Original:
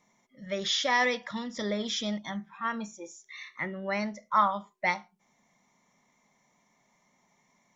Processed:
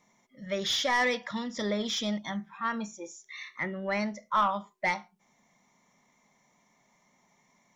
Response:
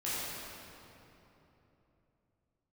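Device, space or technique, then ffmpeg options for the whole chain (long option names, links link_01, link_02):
saturation between pre-emphasis and de-emphasis: -af "highshelf=frequency=4100:gain=9.5,asoftclip=type=tanh:threshold=-19dB,highshelf=frequency=4100:gain=-9.5,volume=1.5dB"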